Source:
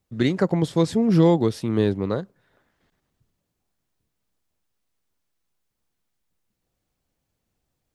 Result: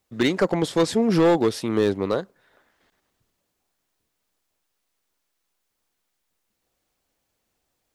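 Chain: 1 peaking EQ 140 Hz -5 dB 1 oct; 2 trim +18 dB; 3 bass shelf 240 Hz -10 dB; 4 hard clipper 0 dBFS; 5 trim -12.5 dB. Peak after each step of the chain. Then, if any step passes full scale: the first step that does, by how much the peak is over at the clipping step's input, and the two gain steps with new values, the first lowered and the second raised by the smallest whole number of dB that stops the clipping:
-8.0 dBFS, +10.0 dBFS, +7.5 dBFS, 0.0 dBFS, -12.5 dBFS; step 2, 7.5 dB; step 2 +10 dB, step 5 -4.5 dB

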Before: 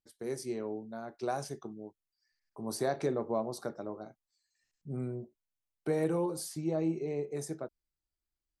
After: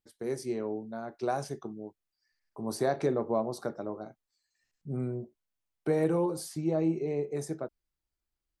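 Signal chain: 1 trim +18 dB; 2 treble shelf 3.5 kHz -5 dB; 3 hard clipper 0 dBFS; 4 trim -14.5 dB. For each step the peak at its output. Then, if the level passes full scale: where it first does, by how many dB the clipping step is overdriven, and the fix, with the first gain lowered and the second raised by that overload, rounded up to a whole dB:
-2.0 dBFS, -2.0 dBFS, -2.0 dBFS, -16.5 dBFS; nothing clips

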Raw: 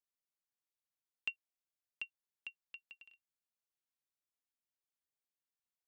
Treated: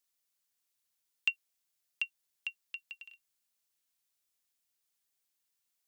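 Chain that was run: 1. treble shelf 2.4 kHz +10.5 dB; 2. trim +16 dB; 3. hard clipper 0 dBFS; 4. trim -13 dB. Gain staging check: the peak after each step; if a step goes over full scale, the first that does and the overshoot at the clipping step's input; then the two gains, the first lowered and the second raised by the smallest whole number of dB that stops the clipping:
-19.5 dBFS, -3.5 dBFS, -3.5 dBFS, -16.5 dBFS; nothing clips

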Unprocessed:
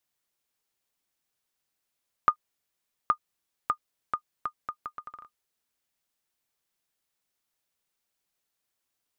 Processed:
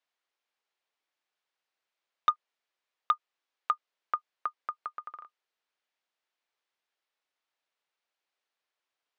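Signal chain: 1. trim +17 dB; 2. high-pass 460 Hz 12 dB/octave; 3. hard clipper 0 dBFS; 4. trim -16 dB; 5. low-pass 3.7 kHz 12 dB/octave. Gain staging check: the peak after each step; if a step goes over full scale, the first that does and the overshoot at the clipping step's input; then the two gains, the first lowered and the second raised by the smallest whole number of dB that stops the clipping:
+8.5 dBFS, +8.5 dBFS, 0.0 dBFS, -16.0 dBFS, -15.5 dBFS; step 1, 8.5 dB; step 1 +8 dB, step 4 -7 dB

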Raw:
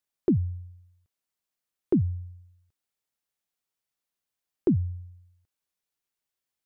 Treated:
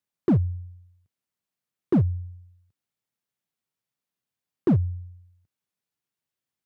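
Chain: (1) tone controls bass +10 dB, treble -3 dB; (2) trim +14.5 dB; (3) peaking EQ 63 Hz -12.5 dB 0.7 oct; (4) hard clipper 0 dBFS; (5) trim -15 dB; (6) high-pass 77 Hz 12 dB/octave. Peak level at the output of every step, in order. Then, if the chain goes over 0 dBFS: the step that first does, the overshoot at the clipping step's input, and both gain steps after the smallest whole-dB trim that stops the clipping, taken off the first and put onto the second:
-10.0 dBFS, +4.5 dBFS, +3.5 dBFS, 0.0 dBFS, -15.0 dBFS, -12.5 dBFS; step 2, 3.5 dB; step 2 +10.5 dB, step 5 -11 dB

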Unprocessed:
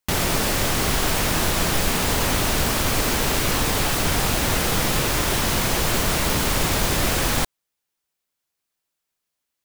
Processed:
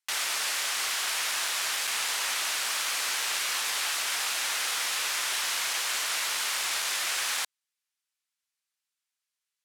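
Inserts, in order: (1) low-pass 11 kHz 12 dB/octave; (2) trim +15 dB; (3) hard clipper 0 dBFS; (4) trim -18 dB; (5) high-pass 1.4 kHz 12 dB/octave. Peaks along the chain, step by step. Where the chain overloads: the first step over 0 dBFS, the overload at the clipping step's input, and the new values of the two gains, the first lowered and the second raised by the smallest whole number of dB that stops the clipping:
-7.5 dBFS, +7.5 dBFS, 0.0 dBFS, -18.0 dBFS, -16.5 dBFS; step 2, 7.5 dB; step 2 +7 dB, step 4 -10 dB

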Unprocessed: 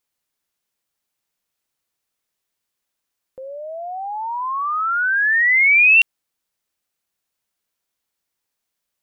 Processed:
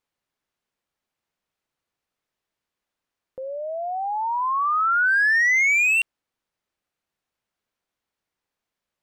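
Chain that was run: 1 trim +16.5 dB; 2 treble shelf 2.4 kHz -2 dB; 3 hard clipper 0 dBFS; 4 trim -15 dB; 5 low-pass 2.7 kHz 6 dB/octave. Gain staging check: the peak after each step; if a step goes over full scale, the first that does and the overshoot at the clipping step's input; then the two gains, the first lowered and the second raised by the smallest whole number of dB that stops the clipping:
+9.0 dBFS, +8.0 dBFS, 0.0 dBFS, -15.0 dBFS, -15.5 dBFS; step 1, 8.0 dB; step 1 +8.5 dB, step 4 -7 dB

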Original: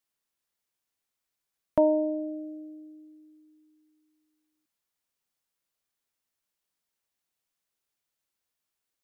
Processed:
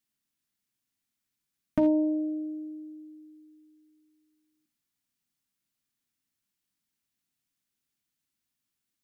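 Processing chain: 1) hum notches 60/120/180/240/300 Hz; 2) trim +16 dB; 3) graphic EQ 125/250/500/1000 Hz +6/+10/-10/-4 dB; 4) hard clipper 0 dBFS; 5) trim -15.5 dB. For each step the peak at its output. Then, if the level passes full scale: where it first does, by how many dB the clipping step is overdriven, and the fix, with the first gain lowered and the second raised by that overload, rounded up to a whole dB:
-12.0 dBFS, +4.0 dBFS, +4.0 dBFS, 0.0 dBFS, -15.5 dBFS; step 2, 4.0 dB; step 2 +12 dB, step 5 -11.5 dB

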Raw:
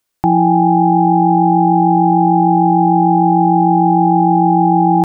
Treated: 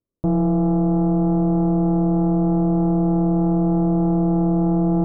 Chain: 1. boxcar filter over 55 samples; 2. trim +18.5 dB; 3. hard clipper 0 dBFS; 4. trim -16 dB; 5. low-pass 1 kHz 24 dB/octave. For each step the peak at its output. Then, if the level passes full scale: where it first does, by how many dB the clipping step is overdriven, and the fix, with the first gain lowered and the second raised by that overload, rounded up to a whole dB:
-9.0 dBFS, +9.5 dBFS, 0.0 dBFS, -16.0 dBFS, -14.5 dBFS; step 2, 9.5 dB; step 2 +8.5 dB, step 4 -6 dB

